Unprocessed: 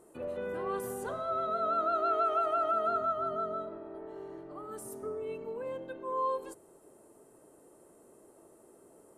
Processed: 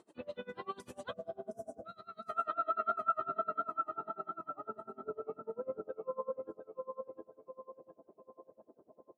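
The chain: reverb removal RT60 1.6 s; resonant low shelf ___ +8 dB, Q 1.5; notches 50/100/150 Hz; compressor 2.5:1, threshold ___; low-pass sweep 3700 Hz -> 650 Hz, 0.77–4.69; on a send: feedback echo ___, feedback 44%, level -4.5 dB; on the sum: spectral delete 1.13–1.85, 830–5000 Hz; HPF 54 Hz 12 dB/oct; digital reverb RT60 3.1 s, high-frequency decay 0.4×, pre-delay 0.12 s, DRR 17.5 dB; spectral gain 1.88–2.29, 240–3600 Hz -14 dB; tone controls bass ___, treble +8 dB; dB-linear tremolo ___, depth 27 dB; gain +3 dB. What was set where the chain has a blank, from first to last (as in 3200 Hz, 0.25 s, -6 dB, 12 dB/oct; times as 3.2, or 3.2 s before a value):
290 Hz, -36 dBFS, 0.714 s, -12 dB, 10 Hz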